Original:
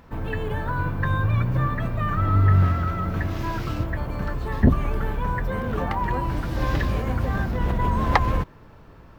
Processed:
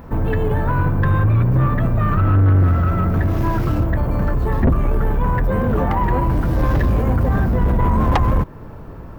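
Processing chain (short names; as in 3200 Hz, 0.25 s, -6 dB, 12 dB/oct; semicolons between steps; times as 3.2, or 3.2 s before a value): bell 3900 Hz -12 dB 2.7 oct; in parallel at -1.5 dB: compressor, threshold -29 dBFS, peak gain reduction 17.5 dB; on the sum: soft clip -18 dBFS, distortion -11 dB; gain +8 dB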